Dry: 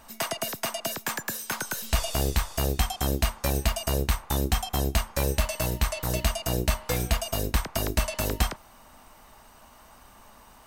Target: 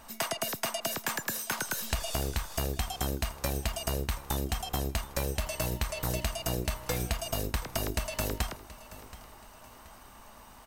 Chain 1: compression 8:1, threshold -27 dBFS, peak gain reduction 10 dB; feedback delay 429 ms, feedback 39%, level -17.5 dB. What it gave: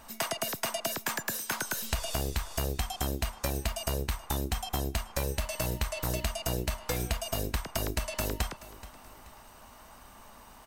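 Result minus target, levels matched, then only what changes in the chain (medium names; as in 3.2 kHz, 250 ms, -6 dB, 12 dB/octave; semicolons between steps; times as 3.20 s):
echo 298 ms early
change: feedback delay 727 ms, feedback 39%, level -17.5 dB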